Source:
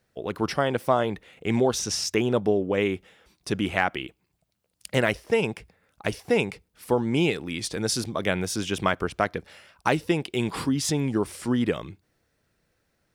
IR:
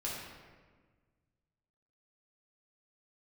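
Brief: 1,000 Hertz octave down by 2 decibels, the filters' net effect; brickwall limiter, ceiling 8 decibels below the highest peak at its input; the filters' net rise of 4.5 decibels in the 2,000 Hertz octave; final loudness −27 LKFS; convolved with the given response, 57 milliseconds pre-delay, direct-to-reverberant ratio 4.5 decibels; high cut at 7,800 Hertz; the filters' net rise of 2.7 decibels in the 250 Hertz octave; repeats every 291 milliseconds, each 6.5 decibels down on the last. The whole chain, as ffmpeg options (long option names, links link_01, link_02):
-filter_complex "[0:a]lowpass=7800,equalizer=frequency=250:width_type=o:gain=3.5,equalizer=frequency=1000:width_type=o:gain=-5,equalizer=frequency=2000:width_type=o:gain=7,alimiter=limit=-12dB:level=0:latency=1,aecho=1:1:291|582|873|1164|1455|1746:0.473|0.222|0.105|0.0491|0.0231|0.0109,asplit=2[link_01][link_02];[1:a]atrim=start_sample=2205,adelay=57[link_03];[link_02][link_03]afir=irnorm=-1:irlink=0,volume=-7dB[link_04];[link_01][link_04]amix=inputs=2:normalize=0,volume=-3dB"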